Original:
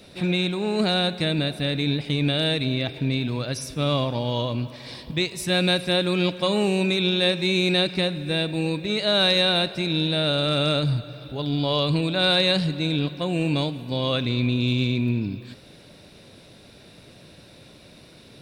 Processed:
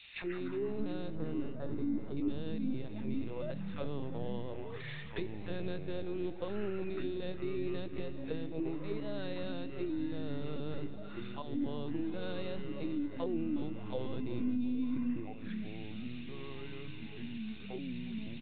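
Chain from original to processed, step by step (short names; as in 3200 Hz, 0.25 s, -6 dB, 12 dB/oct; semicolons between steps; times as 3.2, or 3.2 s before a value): HPF 190 Hz 12 dB/oct; auto-wah 260–3000 Hz, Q 2.7, down, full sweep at -21.5 dBFS; tilt shelf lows -6.5 dB, about 1400 Hz; LPC vocoder at 8 kHz pitch kept; 1.15–2.17 resonant high shelf 1800 Hz -9 dB, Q 3; echoes that change speed 84 ms, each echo -5 st, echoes 3, each echo -6 dB; feedback echo 0.364 s, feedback 55%, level -17 dB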